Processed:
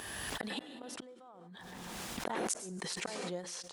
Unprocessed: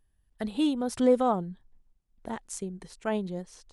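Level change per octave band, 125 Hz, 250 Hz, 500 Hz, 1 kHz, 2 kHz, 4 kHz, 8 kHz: -8.5 dB, -15.0 dB, -14.0 dB, -10.0 dB, +2.0 dB, +1.5 dB, +3.5 dB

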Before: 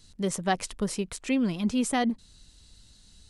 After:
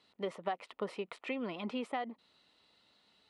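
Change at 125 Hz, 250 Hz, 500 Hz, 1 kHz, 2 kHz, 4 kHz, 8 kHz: -17.0 dB, -15.0 dB, -6.0 dB, -8.5 dB, -9.0 dB, -11.0 dB, -29.0 dB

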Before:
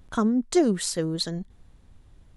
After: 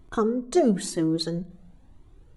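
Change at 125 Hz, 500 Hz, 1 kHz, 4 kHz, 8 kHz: +0.5 dB, +2.0 dB, +1.0 dB, -3.0 dB, -4.0 dB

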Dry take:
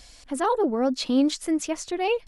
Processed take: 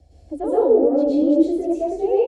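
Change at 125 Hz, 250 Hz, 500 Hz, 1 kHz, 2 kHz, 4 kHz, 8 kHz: no reading, +5.0 dB, +9.0 dB, -1.5 dB, under -15 dB, under -15 dB, under -15 dB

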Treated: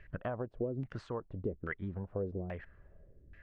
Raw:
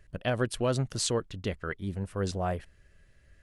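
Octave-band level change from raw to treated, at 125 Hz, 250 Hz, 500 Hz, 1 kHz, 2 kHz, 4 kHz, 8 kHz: -8.0 dB, -6.5 dB, -7.0 dB, -10.5 dB, -7.5 dB, under -25 dB, under -35 dB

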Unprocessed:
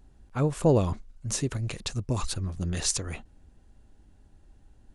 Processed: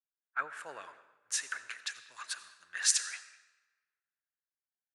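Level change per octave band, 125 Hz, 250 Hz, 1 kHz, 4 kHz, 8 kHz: under -40 dB, under -35 dB, -6.0 dB, -1.0 dB, 0.0 dB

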